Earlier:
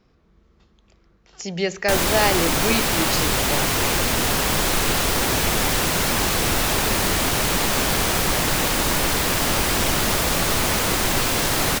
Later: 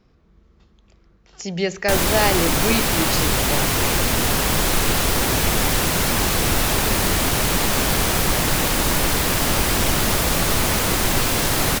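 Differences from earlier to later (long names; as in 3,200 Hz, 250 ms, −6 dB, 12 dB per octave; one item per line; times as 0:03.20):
background: add parametric band 12,000 Hz +2.5 dB 0.66 octaves
master: add low-shelf EQ 220 Hz +4 dB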